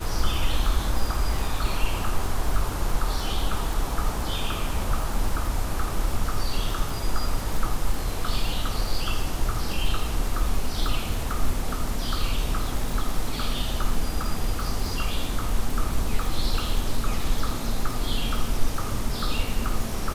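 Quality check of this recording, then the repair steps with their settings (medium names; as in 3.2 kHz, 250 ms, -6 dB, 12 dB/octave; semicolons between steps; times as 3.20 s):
crackle 59 per s -28 dBFS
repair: de-click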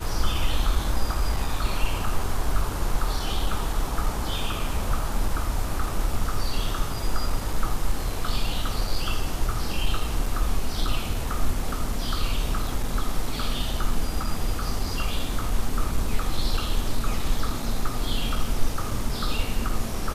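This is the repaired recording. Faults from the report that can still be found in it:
nothing left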